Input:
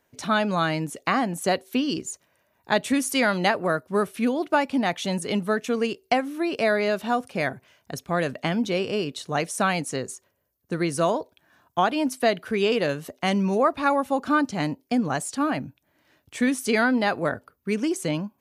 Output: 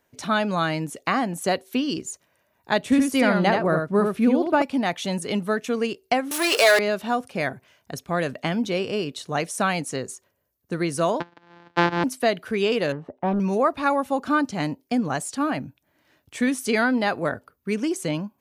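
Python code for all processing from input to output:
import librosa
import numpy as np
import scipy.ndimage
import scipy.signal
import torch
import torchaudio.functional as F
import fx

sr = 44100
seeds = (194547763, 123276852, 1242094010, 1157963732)

y = fx.chain(x, sr, fx.tilt_eq(slope=-2.0),
    fx.echo_single(ms=76, db=-4.5), at=(2.83, 4.62))
y = fx.chain(y, sr, fx.peak_eq(hz=8800.0, db=14.5, octaves=2.5),
    fx.power_curve(exponent=0.5),
    fx.highpass(hz=430.0, slope=24), at=(6.31, 6.79))
y = fx.chain(y, sr, fx.sample_sort(block=256),
    fx.cabinet(low_hz=170.0, low_slope=12, high_hz=4300.0, hz=(310.0, 920.0, 1600.0), db=(5, 10, 8)),
    fx.band_squash(depth_pct=40), at=(11.2, 12.04))
y = fx.chain(y, sr, fx.lowpass(hz=1100.0, slope=12),
    fx.peak_eq(hz=860.0, db=8.0, octaves=0.29),
    fx.doppler_dist(depth_ms=0.5), at=(12.92, 13.4))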